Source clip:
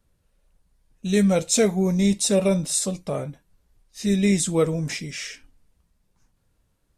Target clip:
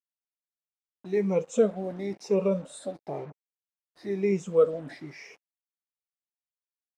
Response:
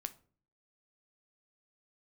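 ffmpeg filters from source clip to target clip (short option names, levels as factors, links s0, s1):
-af "afftfilt=real='re*pow(10,16/40*sin(2*PI*(0.78*log(max(b,1)*sr/1024/100)/log(2)-(1)*(pts-256)/sr)))':imag='im*pow(10,16/40*sin(2*PI*(0.78*log(max(b,1)*sr/1024/100)/log(2)-(1)*(pts-256)/sr)))':win_size=1024:overlap=0.75,acrusher=bits=5:mix=0:aa=0.5,bandpass=f=540:t=q:w=0.93:csg=0,volume=0.596"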